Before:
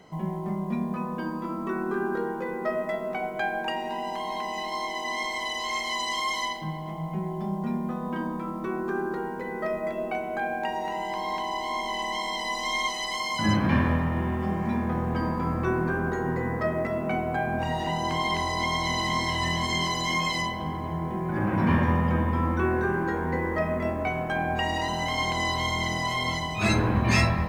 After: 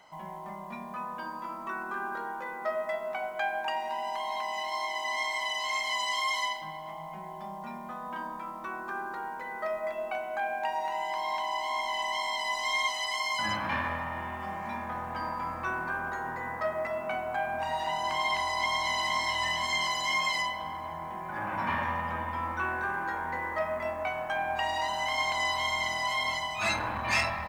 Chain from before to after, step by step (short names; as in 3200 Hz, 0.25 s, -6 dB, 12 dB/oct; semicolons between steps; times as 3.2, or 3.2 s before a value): resonant low shelf 550 Hz -12.5 dB, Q 1.5; comb 3.4 ms, depth 32%; core saturation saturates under 890 Hz; gain -2 dB